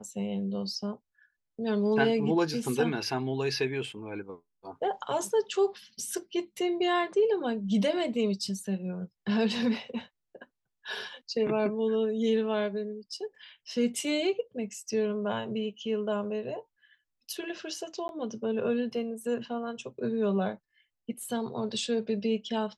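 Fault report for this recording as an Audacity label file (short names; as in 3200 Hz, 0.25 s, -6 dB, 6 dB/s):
18.080000	18.090000	gap 11 ms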